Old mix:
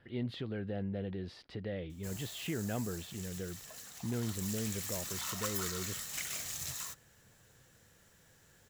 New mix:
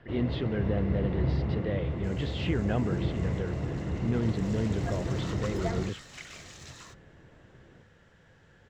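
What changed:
speech +7.5 dB; first sound: unmuted; master: add distance through air 140 m

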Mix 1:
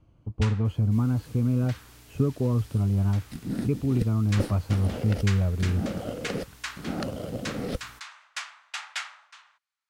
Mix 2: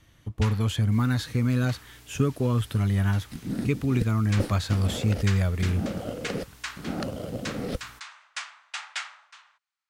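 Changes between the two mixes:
speech: remove boxcar filter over 24 samples; first sound: add brick-wall FIR low-pass 10 kHz

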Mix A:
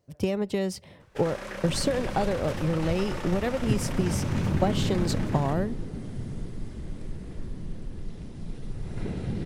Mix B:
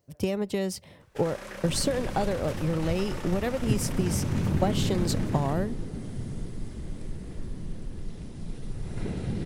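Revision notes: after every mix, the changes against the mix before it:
speech: send -6.0 dB; first sound -3.5 dB; master: add treble shelf 7.5 kHz +7.5 dB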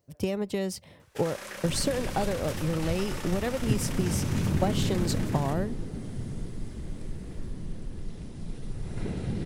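first sound: add tilt EQ +2 dB/octave; reverb: off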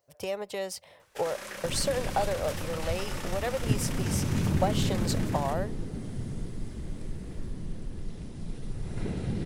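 speech: add resonant low shelf 400 Hz -12.5 dB, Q 1.5

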